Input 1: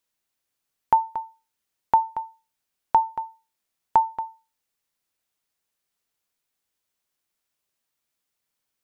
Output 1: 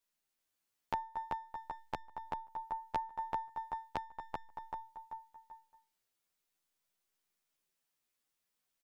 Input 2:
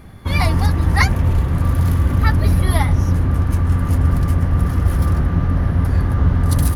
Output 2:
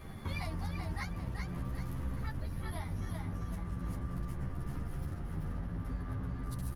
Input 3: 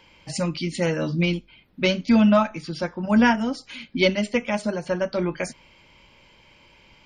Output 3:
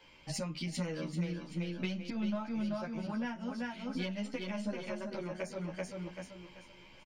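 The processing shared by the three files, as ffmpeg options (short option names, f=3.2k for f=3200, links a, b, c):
-filter_complex "[0:a]aeval=exprs='if(lt(val(0),0),0.708*val(0),val(0))':c=same,equalizer=f=80:w=7.2:g=-9,asplit=2[a][b];[b]aecho=0:1:386|772|1158|1544:0.562|0.191|0.065|0.0221[c];[a][c]amix=inputs=2:normalize=0,acompressor=threshold=-31dB:ratio=10,adynamicequalizer=threshold=0.00224:dfrequency=190:dqfactor=7.9:tfrequency=190:tqfactor=7.9:attack=5:release=100:ratio=0.375:range=3:mode=boostabove:tftype=bell,asplit=2[d][e];[e]adelay=11,afreqshift=0.41[f];[d][f]amix=inputs=2:normalize=1,volume=-1dB"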